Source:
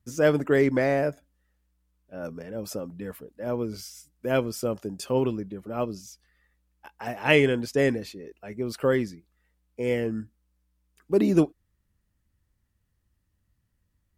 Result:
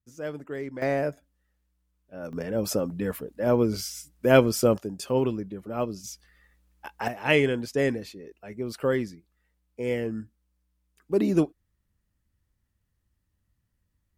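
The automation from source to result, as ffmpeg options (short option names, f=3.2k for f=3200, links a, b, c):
-af "asetnsamples=n=441:p=0,asendcmd='0.82 volume volume -2dB;2.33 volume volume 7dB;4.78 volume volume 0dB;6.04 volume volume 6.5dB;7.08 volume volume -2dB',volume=-13.5dB"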